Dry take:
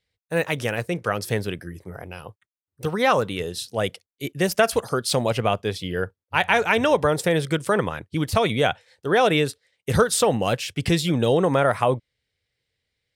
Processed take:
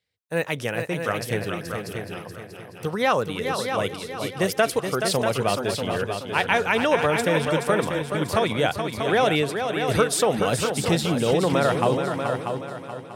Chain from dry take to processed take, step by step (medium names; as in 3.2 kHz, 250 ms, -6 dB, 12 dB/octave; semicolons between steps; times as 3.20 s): high-pass 96 Hz; on a send: multi-head delay 213 ms, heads second and third, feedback 41%, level -7 dB; on the sum: trim -2 dB